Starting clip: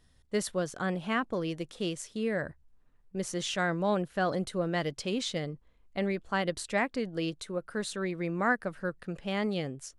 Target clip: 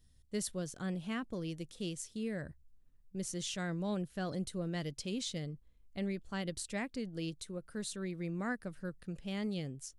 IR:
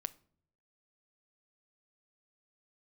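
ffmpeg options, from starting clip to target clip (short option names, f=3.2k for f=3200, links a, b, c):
-af "equalizer=f=1k:w=0.34:g=-14"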